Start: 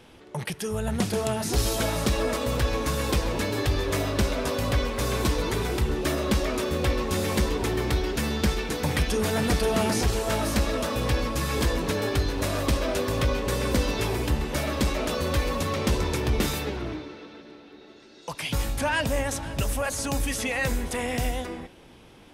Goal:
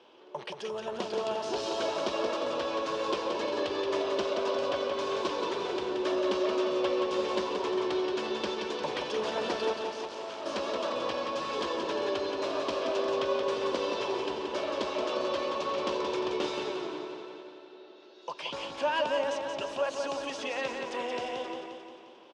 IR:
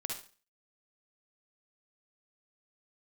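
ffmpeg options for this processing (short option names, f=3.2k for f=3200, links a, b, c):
-filter_complex "[0:a]asettb=1/sr,asplit=3[a][b][c];[a]atrim=end=9.734[d];[b]atrim=start=9.73:end=10.46,asetpts=PTS-STARTPTS,afade=t=in:d=0.004:c=qsin,afade=t=out:st=0.726:d=0.004:c=qsin,volume=33dB,asoftclip=hard,volume=-33dB[e];[c]atrim=start=10.456[f];[d][e]acrossfade=d=0.004:c1=hsin:c2=qsin[g];[g][f]acrossfade=d=0.004:c1=qsin:c2=hsin,highpass=360,equalizer=f=370:t=q:w=4:g=8,equalizer=f=580:t=q:w=4:g=7,equalizer=f=1k:t=q:w=4:g=8,equalizer=f=2k:t=q:w=4:g=-6,equalizer=f=3k:t=q:w=4:g=5,lowpass=f=5.6k:w=0.5412,lowpass=f=5.6k:w=1.3066,aecho=1:1:176|352|528|704|880|1056|1232:0.531|0.297|0.166|0.0932|0.0522|0.0292|0.0164,volume=-7.5dB"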